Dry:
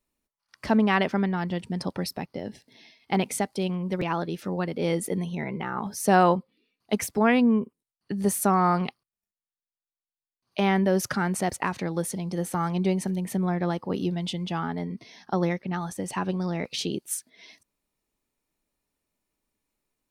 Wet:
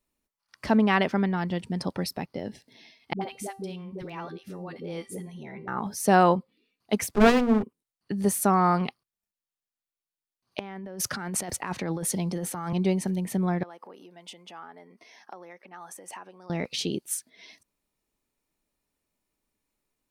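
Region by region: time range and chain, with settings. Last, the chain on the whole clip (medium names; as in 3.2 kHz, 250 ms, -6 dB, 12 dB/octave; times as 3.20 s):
3.13–5.68 s: feedback comb 390 Hz, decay 0.35 s, mix 70% + phase dispersion highs, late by 82 ms, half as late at 430 Hz
7.15–7.63 s: peaking EQ 1.2 kHz +10 dB 2.3 oct + hum notches 60/120/180/240/300/360/420/480/540 Hz + sliding maximum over 33 samples
10.59–12.73 s: bass shelf 330 Hz -2.5 dB + compressor with a negative ratio -32 dBFS + three bands expanded up and down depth 40%
13.63–16.50 s: peaking EQ 4 kHz -8.5 dB 0.95 oct + compression 10:1, threshold -35 dBFS + high-pass 530 Hz
whole clip: none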